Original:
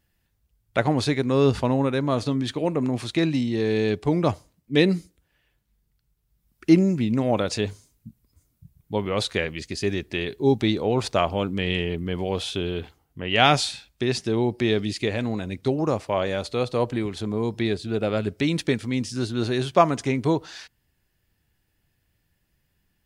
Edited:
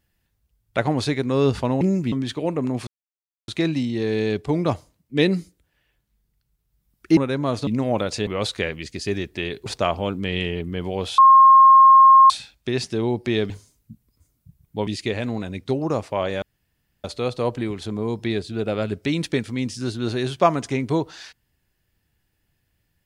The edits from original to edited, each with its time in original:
1.81–2.31 s: swap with 6.75–7.06 s
3.06 s: insert silence 0.61 s
7.66–9.03 s: move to 14.84 s
10.42–11.00 s: delete
12.52–13.64 s: bleep 1.07 kHz -7 dBFS
16.39 s: insert room tone 0.62 s

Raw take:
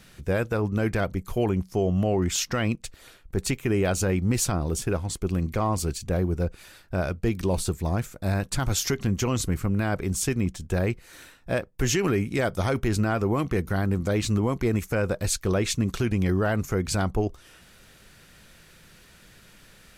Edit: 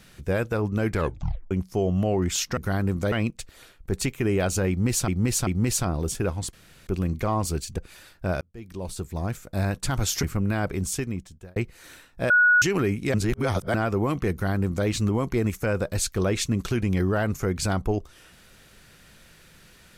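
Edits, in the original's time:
0.92 s: tape stop 0.59 s
4.14–4.53 s: loop, 3 plays
5.20 s: insert room tone 0.34 s
6.11–6.47 s: delete
7.10–8.25 s: fade in
8.92–9.52 s: delete
10.05–10.85 s: fade out
11.59–11.91 s: bleep 1.46 kHz -14 dBFS
12.43–13.03 s: reverse
13.61–14.16 s: copy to 2.57 s

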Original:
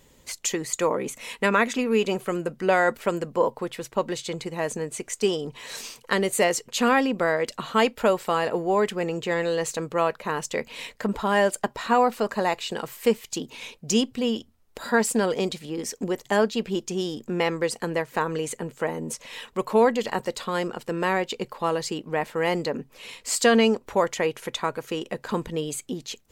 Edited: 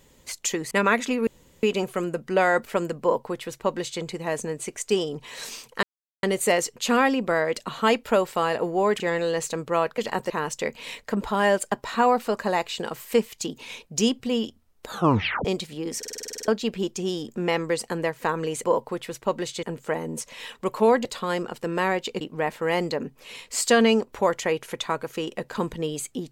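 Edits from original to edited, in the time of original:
0.71–1.39 s: delete
1.95 s: insert room tone 0.36 s
3.34–4.33 s: copy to 18.56 s
6.15 s: insert silence 0.40 s
8.92–9.24 s: delete
14.80 s: tape stop 0.57 s
15.90 s: stutter in place 0.05 s, 10 plays
19.98–20.30 s: move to 10.22 s
21.46–21.95 s: delete

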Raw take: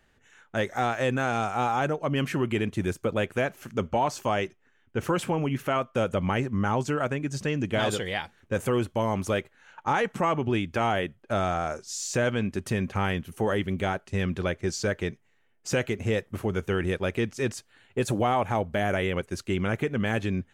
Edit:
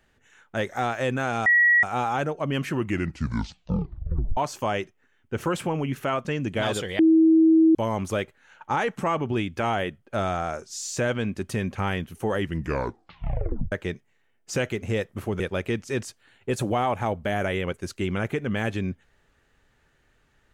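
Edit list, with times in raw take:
1.46 s: add tone 1.92 kHz -14.5 dBFS 0.37 s
2.37 s: tape stop 1.63 s
5.88–7.42 s: delete
8.16–8.92 s: bleep 322 Hz -13 dBFS
13.55 s: tape stop 1.34 s
16.57–16.89 s: delete

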